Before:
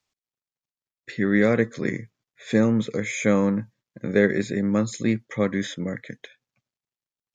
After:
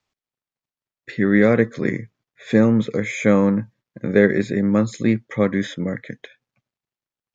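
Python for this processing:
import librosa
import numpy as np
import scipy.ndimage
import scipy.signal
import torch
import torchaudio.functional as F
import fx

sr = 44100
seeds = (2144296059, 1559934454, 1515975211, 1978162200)

y = fx.high_shelf(x, sr, hz=5000.0, db=-11.5)
y = y * librosa.db_to_amplitude(4.5)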